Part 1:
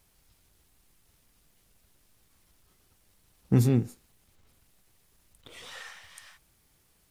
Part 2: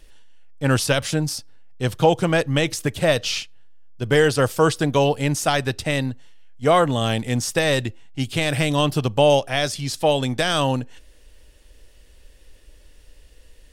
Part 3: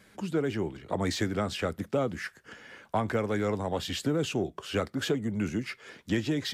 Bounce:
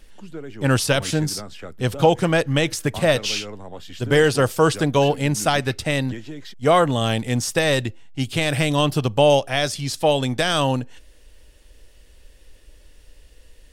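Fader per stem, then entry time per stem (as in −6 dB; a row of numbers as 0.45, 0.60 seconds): muted, +0.5 dB, −6.5 dB; muted, 0.00 s, 0.00 s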